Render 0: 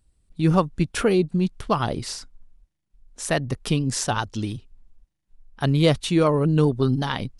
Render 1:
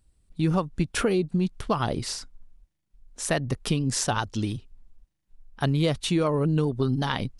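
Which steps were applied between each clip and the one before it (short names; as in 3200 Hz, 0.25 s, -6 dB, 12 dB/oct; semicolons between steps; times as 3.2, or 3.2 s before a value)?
compressor 5:1, threshold -20 dBFS, peak gain reduction 7.5 dB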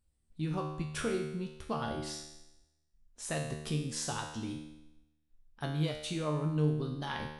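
resonator 76 Hz, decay 0.92 s, harmonics all, mix 90%; gain +2.5 dB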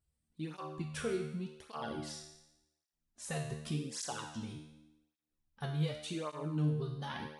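tape flanging out of phase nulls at 0.87 Hz, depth 4 ms; gain -1 dB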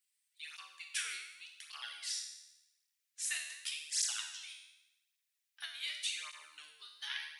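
Chebyshev high-pass 2000 Hz, order 3; gain +9 dB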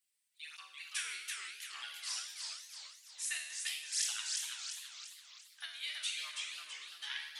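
warbling echo 0.336 s, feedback 48%, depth 207 cents, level -3.5 dB; gain -1 dB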